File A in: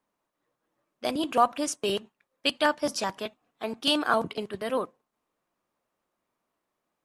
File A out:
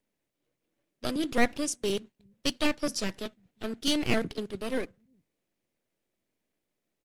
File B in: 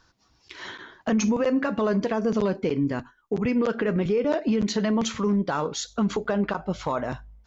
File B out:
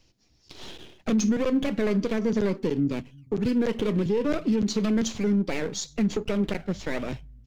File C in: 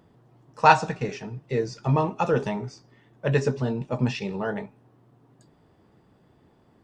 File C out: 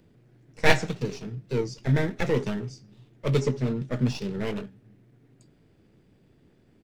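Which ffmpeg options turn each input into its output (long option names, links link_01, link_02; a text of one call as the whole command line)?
ffmpeg -i in.wav -filter_complex "[0:a]acrossover=split=160|620|3000[link_01][link_02][link_03][link_04];[link_01]aecho=1:1:357:0.211[link_05];[link_03]aeval=exprs='abs(val(0))':channel_layout=same[link_06];[link_05][link_02][link_06][link_04]amix=inputs=4:normalize=0" out.wav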